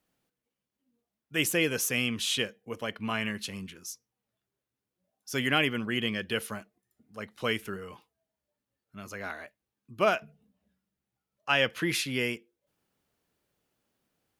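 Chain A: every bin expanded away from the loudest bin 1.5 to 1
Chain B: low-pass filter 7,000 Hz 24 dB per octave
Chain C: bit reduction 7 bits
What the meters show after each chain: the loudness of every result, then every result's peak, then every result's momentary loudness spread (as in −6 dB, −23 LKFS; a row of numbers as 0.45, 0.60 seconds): −31.0, −30.0, −30.0 LKFS; −10.5, −10.5, −10.5 dBFS; 20, 17, 17 LU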